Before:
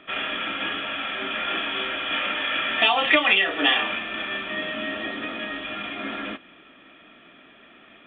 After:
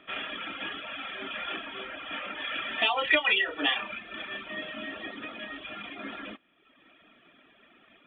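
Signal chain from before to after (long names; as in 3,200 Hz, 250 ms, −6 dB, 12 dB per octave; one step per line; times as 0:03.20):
reverb reduction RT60 1 s
0:01.56–0:02.39: high-shelf EQ 3,300 Hz −10 dB
0:02.94–0:03.57: comb filter 2.1 ms, depth 51%
level −6 dB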